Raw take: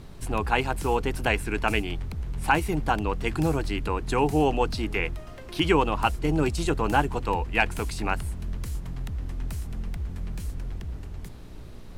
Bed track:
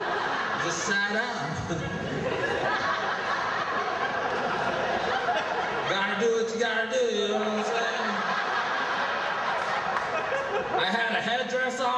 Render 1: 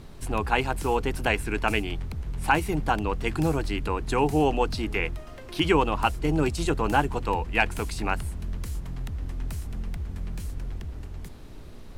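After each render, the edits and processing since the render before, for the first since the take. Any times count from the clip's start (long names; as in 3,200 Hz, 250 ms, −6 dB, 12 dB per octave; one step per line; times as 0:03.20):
hum removal 60 Hz, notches 3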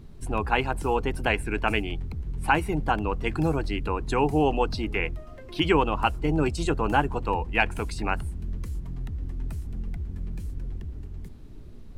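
broadband denoise 10 dB, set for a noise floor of −42 dBFS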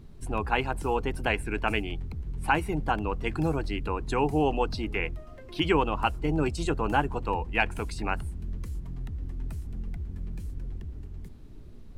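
level −2.5 dB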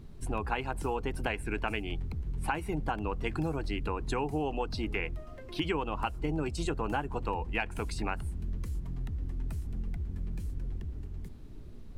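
downward compressor 6 to 1, threshold −28 dBFS, peak gain reduction 10 dB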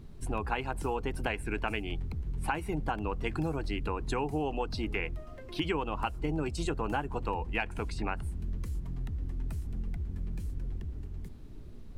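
0:07.72–0:08.23: high-shelf EQ 7,400 Hz −11.5 dB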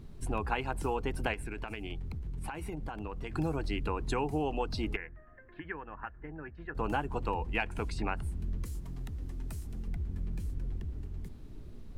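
0:01.33–0:03.35: downward compressor 10 to 1, threshold −34 dBFS
0:04.96–0:06.75: transistor ladder low-pass 1,800 Hz, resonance 85%
0:08.65–0:09.88: bass and treble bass −4 dB, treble +6 dB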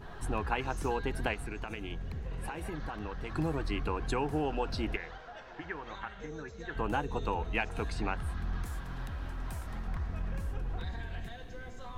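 mix in bed track −22 dB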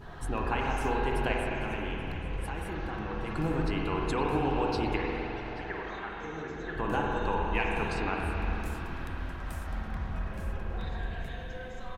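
single-tap delay 832 ms −19.5 dB
spring reverb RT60 3.6 s, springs 43/51 ms, chirp 75 ms, DRR −2 dB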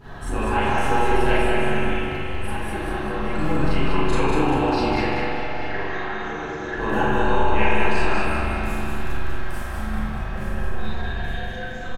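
repeating echo 196 ms, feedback 44%, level −4 dB
four-comb reverb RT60 0.52 s, combs from 29 ms, DRR −7 dB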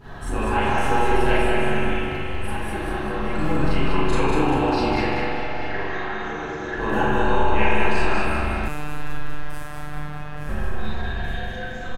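0:08.68–0:10.49: phases set to zero 149 Hz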